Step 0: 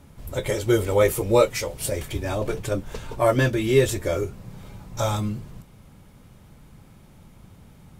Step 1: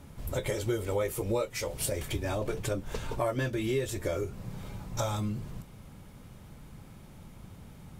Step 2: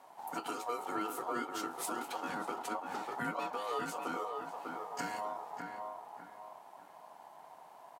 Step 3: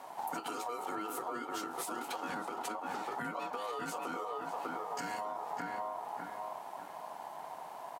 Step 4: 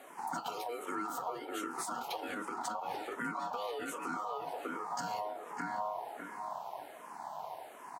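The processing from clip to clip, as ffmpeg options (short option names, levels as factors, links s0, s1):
-af "acompressor=threshold=0.0355:ratio=4"
-filter_complex "[0:a]asplit=2[s0][s1];[s1]adelay=597,lowpass=f=1300:p=1,volume=0.631,asplit=2[s2][s3];[s3]adelay=597,lowpass=f=1300:p=1,volume=0.35,asplit=2[s4][s5];[s5]adelay=597,lowpass=f=1300:p=1,volume=0.35,asplit=2[s6][s7];[s7]adelay=597,lowpass=f=1300:p=1,volume=0.35[s8];[s0][s2][s4][s6][s8]amix=inputs=5:normalize=0,aeval=exprs='val(0)*sin(2*PI*840*n/s)':c=same,highpass=f=140:w=0.5412,highpass=f=140:w=1.3066,volume=0.562"
-af "alimiter=level_in=2.82:limit=0.0631:level=0:latency=1:release=247,volume=0.355,acompressor=threshold=0.00631:ratio=6,volume=2.82"
-filter_complex "[0:a]asplit=2[s0][s1];[s1]afreqshift=-1.3[s2];[s0][s2]amix=inputs=2:normalize=1,volume=1.41"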